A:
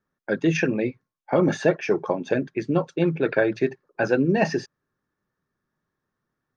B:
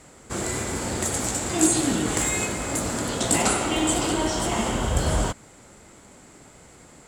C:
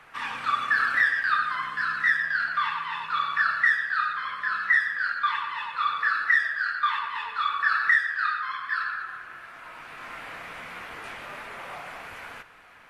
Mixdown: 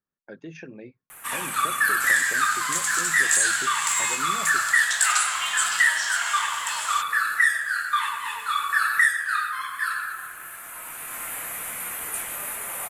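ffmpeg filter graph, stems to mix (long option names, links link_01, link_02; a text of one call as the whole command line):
ffmpeg -i stem1.wav -i stem2.wav -i stem3.wav -filter_complex "[0:a]acompressor=threshold=-27dB:ratio=2,volume=-13.5dB[link_01];[1:a]highpass=frequency=1200:width=0.5412,highpass=frequency=1200:width=1.3066,adelay=1700,volume=1.5dB[link_02];[2:a]highshelf=frequency=4600:gain=7.5,aexciter=amount=13.6:drive=6.1:freq=7500,adelay=1100,volume=0.5dB[link_03];[link_01][link_02][link_03]amix=inputs=3:normalize=0" out.wav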